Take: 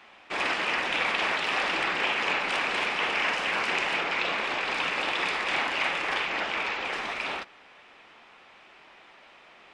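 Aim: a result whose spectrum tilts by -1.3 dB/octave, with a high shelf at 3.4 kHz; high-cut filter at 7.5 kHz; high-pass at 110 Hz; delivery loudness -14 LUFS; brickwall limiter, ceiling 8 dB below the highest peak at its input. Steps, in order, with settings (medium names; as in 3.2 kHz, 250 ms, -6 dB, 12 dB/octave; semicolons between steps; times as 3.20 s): high-pass 110 Hz; low-pass 7.5 kHz; treble shelf 3.4 kHz +4.5 dB; trim +13.5 dB; peak limiter -5.5 dBFS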